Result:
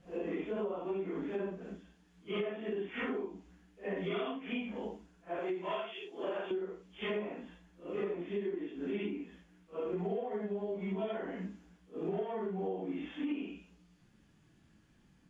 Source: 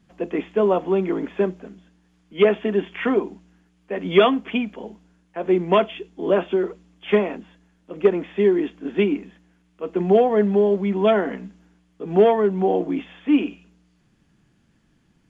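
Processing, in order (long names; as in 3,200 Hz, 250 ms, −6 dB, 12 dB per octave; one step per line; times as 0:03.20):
random phases in long frames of 200 ms
0:05.39–0:06.51: high-pass filter 850 Hz 6 dB per octave
downward compressor 12 to 1, threshold −30 dBFS, peak gain reduction 21 dB
level −3.5 dB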